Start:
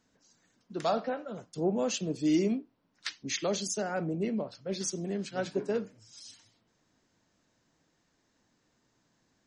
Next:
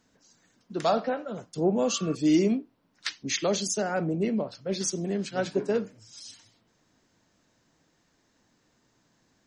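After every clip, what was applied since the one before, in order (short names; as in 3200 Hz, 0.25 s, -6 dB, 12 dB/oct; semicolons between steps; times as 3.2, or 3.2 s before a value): spectral repair 1.86–2.12, 1100–2700 Hz before; gain +4.5 dB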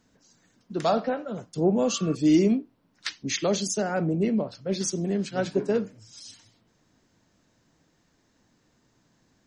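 low shelf 290 Hz +5 dB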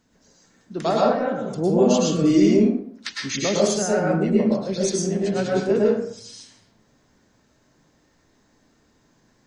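plate-style reverb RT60 0.62 s, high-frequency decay 0.55×, pre-delay 95 ms, DRR -4 dB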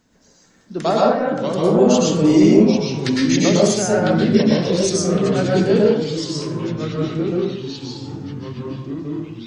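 echoes that change speed 0.422 s, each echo -3 st, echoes 3, each echo -6 dB; gain +3.5 dB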